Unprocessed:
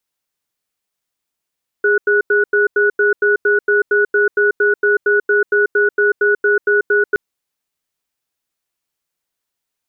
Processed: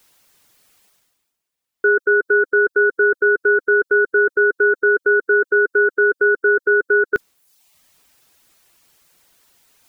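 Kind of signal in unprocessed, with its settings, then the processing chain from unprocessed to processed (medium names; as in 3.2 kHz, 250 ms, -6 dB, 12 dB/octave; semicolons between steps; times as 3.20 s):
cadence 411 Hz, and 1.47 kHz, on 0.14 s, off 0.09 s, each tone -13 dBFS 5.32 s
reverb removal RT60 0.55 s; reverse; upward compressor, threshold -38 dBFS; reverse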